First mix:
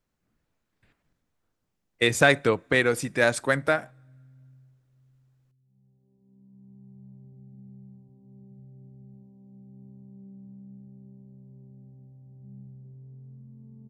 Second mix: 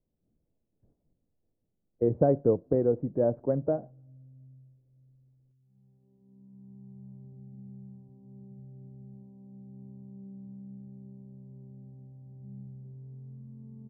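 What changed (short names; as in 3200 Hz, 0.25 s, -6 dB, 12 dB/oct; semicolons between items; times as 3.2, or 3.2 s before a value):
speech: add inverse Chebyshev low-pass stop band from 3600 Hz, stop band 80 dB; background: send +10.0 dB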